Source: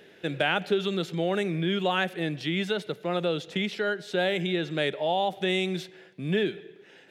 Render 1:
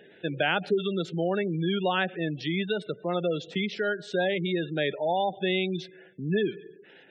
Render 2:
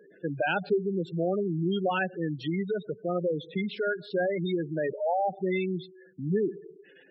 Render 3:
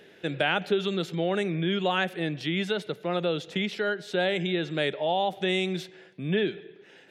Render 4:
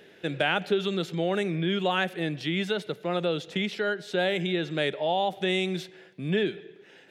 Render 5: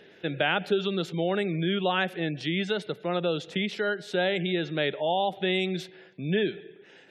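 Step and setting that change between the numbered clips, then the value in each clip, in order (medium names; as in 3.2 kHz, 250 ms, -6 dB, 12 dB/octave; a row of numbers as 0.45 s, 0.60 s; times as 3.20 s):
spectral gate, under each frame's peak: -20 dB, -10 dB, -50 dB, -60 dB, -35 dB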